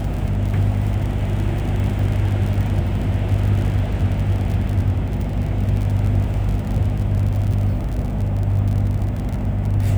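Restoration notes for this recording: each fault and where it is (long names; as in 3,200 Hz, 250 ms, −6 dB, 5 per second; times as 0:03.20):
surface crackle 52 per second −25 dBFS
mains hum 50 Hz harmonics 5 −24 dBFS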